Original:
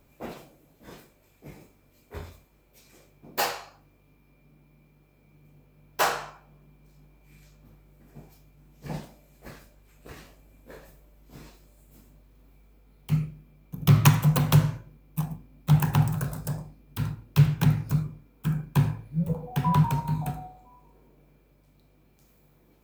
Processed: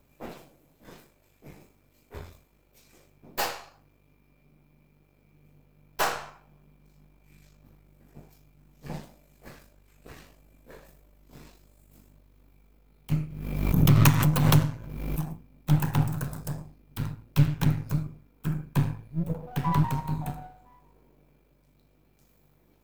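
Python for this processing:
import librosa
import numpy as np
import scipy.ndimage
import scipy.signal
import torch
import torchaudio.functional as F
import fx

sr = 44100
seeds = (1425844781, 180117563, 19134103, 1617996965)

y = np.where(x < 0.0, 10.0 ** (-7.0 / 20.0) * x, x)
y = fx.pre_swell(y, sr, db_per_s=42.0, at=(13.11, 15.34))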